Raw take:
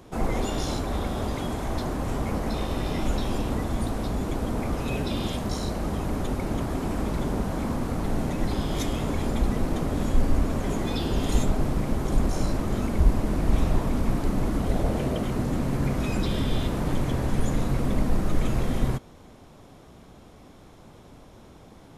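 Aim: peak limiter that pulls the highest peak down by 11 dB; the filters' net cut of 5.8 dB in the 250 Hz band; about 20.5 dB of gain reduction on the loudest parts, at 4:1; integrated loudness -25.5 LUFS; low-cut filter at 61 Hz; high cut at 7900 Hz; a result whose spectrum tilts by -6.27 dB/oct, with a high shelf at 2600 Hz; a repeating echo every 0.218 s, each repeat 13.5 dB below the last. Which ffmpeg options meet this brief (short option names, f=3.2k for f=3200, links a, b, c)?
-af "highpass=61,lowpass=7.9k,equalizer=f=250:t=o:g=-7.5,highshelf=f=2.6k:g=-7.5,acompressor=threshold=-45dB:ratio=4,alimiter=level_in=19dB:limit=-24dB:level=0:latency=1,volume=-19dB,aecho=1:1:218|436:0.211|0.0444,volume=26.5dB"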